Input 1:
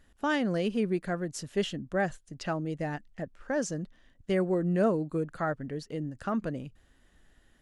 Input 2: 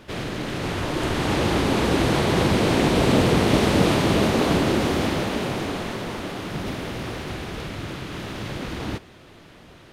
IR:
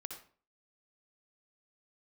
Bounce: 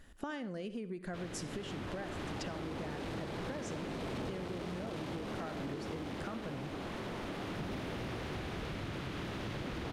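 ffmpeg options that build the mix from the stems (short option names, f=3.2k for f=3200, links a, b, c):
-filter_complex "[0:a]acompressor=threshold=-38dB:ratio=5,volume=1.5dB,asplit=3[a][b][c];[b]volume=-3.5dB[d];[1:a]highshelf=f=5.3k:g=-6.5,asoftclip=type=tanh:threshold=-20.5dB,adelay=1050,volume=-1.5dB,asplit=2[e][f];[f]volume=-8dB[g];[c]apad=whole_len=484152[h];[e][h]sidechaincompress=threshold=-54dB:ratio=8:attack=16:release=875[i];[2:a]atrim=start_sample=2205[j];[d][g]amix=inputs=2:normalize=0[k];[k][j]afir=irnorm=-1:irlink=0[l];[a][i][l]amix=inputs=3:normalize=0,acompressor=threshold=-38dB:ratio=5"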